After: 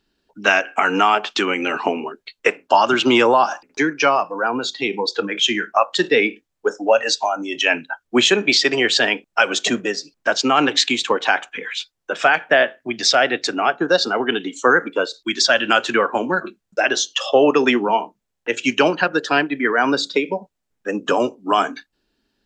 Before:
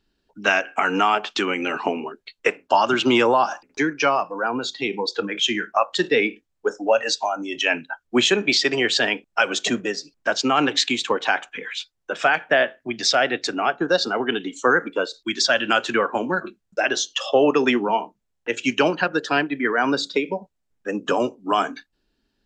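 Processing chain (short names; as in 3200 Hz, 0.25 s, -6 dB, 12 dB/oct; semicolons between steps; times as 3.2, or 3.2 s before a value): low shelf 120 Hz -7 dB; gain +3.5 dB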